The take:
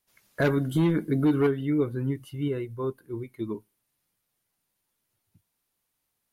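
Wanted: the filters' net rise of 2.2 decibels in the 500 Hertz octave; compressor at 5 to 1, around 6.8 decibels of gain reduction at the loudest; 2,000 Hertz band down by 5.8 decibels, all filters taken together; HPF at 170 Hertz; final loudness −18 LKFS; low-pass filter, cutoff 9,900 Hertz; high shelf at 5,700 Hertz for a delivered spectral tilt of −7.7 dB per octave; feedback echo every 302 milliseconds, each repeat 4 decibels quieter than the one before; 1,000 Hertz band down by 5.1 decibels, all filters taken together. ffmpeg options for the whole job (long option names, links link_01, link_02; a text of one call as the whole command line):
ffmpeg -i in.wav -af "highpass=170,lowpass=9900,equalizer=frequency=500:width_type=o:gain=4.5,equalizer=frequency=1000:width_type=o:gain=-7.5,equalizer=frequency=2000:width_type=o:gain=-4.5,highshelf=frequency=5700:gain=-4,acompressor=threshold=-25dB:ratio=5,aecho=1:1:302|604|906|1208|1510|1812|2114|2416|2718:0.631|0.398|0.25|0.158|0.0994|0.0626|0.0394|0.0249|0.0157,volume=12dB" out.wav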